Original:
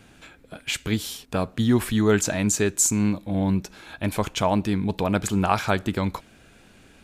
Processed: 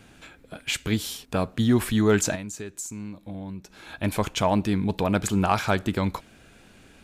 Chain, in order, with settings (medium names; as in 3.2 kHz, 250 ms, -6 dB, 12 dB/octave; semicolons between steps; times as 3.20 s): saturation -7.5 dBFS, distortion -28 dB; 2.35–3.94 s: compression 6:1, threshold -34 dBFS, peak gain reduction 15.5 dB